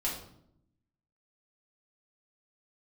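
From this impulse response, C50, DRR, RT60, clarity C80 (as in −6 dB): 5.5 dB, −6.0 dB, 0.70 s, 9.0 dB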